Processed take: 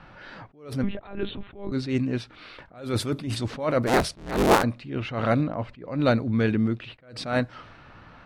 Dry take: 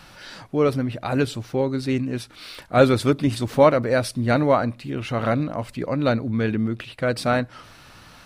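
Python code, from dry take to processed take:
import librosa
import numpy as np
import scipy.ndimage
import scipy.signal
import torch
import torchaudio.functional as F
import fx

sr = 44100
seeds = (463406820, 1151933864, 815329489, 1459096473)

y = fx.cycle_switch(x, sr, every=3, mode='inverted', at=(3.86, 4.62), fade=0.02)
y = fx.env_lowpass(y, sr, base_hz=1800.0, full_db=-15.5)
y = fx.lpc_monotone(y, sr, seeds[0], pitch_hz=200.0, order=10, at=(0.83, 1.72))
y = fx.lowpass(y, sr, hz=2400.0, slope=6, at=(5.41, 5.88))
y = fx.attack_slew(y, sr, db_per_s=120.0)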